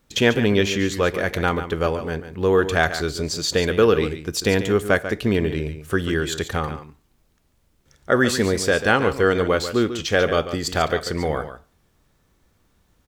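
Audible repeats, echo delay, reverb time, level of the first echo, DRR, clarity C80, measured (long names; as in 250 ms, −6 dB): 1, 142 ms, no reverb audible, −11.0 dB, no reverb audible, no reverb audible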